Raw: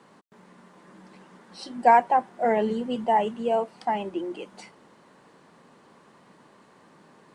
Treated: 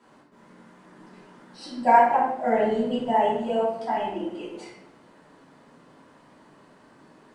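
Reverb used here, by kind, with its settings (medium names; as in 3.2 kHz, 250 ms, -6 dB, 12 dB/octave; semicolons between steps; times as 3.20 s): simulated room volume 210 m³, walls mixed, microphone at 2.9 m; trim -8.5 dB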